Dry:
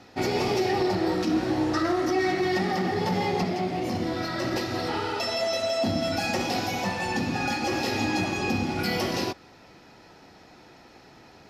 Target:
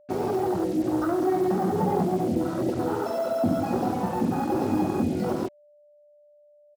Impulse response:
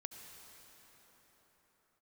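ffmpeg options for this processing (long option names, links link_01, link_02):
-filter_complex "[0:a]acrossover=split=100|580|2400[link_01][link_02][link_03][link_04];[link_02]dynaudnorm=framelen=250:gausssize=21:maxgain=6dB[link_05];[link_03]asplit=2[link_06][link_07];[link_07]adelay=16,volume=-7dB[link_08];[link_06][link_08]amix=inputs=2:normalize=0[link_09];[link_01][link_05][link_09][link_04]amix=inputs=4:normalize=0,afwtdn=0.0562,highshelf=frequency=7400:gain=-5,atempo=1.7,lowshelf=frequency=74:gain=-7,acrusher=bits=6:mix=0:aa=0.5,aeval=exprs='val(0)+0.002*sin(2*PI*590*n/s)':channel_layout=same"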